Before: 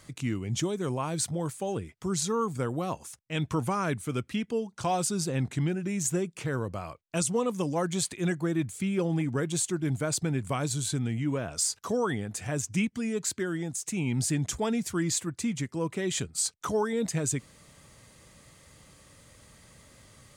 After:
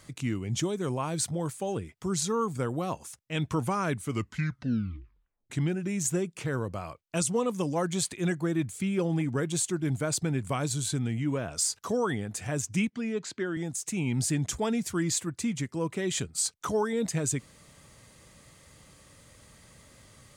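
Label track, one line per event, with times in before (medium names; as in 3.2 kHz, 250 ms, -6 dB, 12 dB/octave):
4.030000	4.030000	tape stop 1.47 s
12.900000	13.570000	band-pass 170–4300 Hz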